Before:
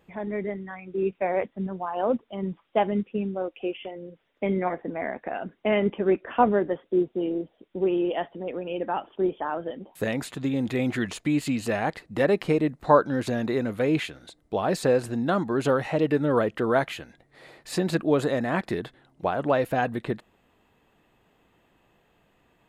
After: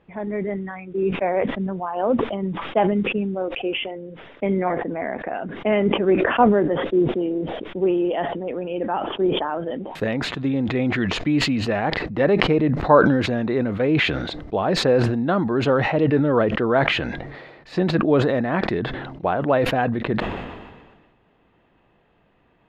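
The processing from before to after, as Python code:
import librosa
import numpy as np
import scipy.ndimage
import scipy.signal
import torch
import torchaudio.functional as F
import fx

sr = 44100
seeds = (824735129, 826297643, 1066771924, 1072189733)

y = fx.air_absorb(x, sr, metres=240.0)
y = fx.sustainer(y, sr, db_per_s=39.0)
y = F.gain(torch.from_numpy(y), 4.0).numpy()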